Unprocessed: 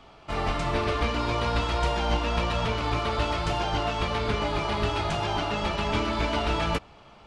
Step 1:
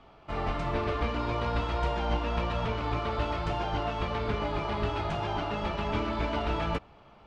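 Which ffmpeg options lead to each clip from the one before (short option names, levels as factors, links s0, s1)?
-af "aemphasis=mode=reproduction:type=75kf,volume=0.708"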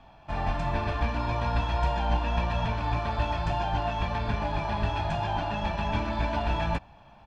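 -af "aecho=1:1:1.2:0.65"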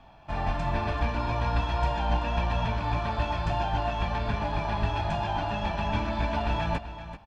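-af "aecho=1:1:385:0.237"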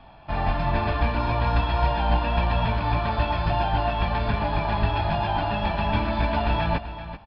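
-af "aresample=11025,aresample=44100,volume=1.68"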